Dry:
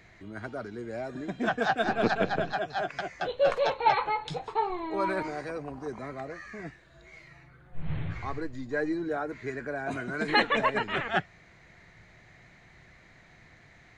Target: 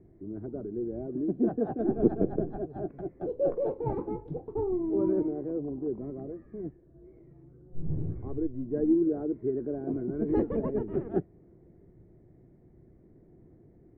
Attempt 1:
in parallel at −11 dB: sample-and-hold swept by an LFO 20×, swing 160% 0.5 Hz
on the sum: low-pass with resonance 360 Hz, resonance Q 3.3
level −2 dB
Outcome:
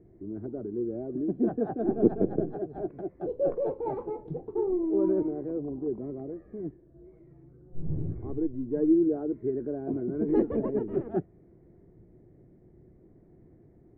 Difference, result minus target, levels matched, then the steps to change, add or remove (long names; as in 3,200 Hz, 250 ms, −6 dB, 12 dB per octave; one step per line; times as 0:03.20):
sample-and-hold swept by an LFO: distortion −9 dB
change: sample-and-hold swept by an LFO 63×, swing 160% 0.5 Hz